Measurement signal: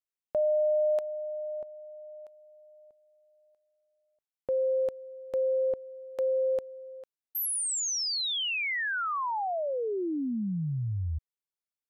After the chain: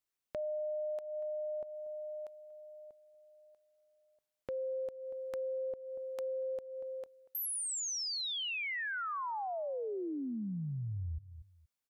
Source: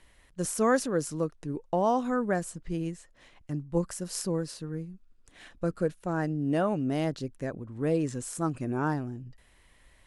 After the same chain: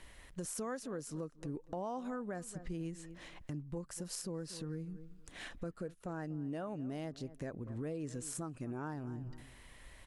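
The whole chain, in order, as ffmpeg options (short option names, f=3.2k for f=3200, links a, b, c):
-filter_complex "[0:a]asplit=2[a][b];[b]adelay=237,lowpass=f=1.7k:p=1,volume=-21dB,asplit=2[c][d];[d]adelay=237,lowpass=f=1.7k:p=1,volume=0.17[e];[a][c][e]amix=inputs=3:normalize=0,acompressor=threshold=-40dB:ratio=8:attack=2.3:release=239:knee=6:detection=rms,volume=4dB"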